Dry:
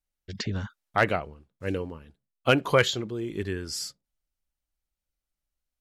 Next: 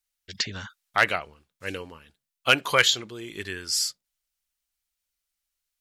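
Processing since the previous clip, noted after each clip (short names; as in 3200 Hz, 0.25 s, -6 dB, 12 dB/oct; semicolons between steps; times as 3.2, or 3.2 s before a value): tilt shelf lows -9 dB, about 920 Hz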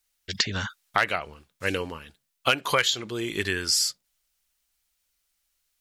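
compressor 4:1, threshold -29 dBFS, peak gain reduction 13.5 dB; gain +8 dB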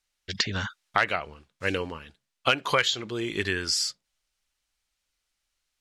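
air absorption 55 m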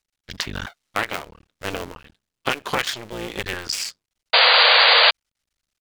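cycle switcher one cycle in 2, muted; painted sound noise, 4.33–5.11, 460–4800 Hz -16 dBFS; gain +2.5 dB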